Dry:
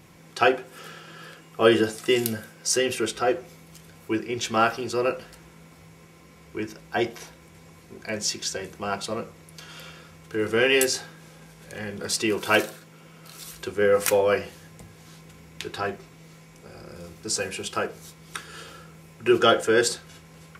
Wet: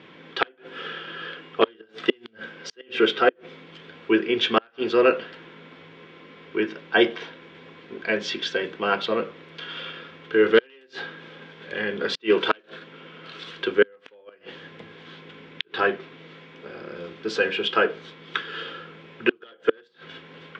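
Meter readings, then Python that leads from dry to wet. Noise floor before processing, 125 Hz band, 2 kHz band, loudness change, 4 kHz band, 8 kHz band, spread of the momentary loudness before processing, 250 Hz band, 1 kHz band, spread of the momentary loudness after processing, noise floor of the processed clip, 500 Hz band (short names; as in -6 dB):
-51 dBFS, -7.0 dB, +2.0 dB, 0.0 dB, +1.0 dB, under -15 dB, 22 LU, +0.5 dB, -0.5 dB, 22 LU, -56 dBFS, +0.5 dB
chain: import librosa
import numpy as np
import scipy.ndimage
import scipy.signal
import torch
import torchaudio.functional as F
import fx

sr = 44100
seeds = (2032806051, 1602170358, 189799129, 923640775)

y = np.minimum(x, 2.0 * 10.0 ** (-13.0 / 20.0) - x)
y = fx.gate_flip(y, sr, shuts_db=-13.0, range_db=-38)
y = fx.cabinet(y, sr, low_hz=240.0, low_slope=12, high_hz=3500.0, hz=(270.0, 440.0, 750.0, 1600.0, 3300.0), db=(4, 4, -5, 5, 9))
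y = y * 10.0 ** (5.5 / 20.0)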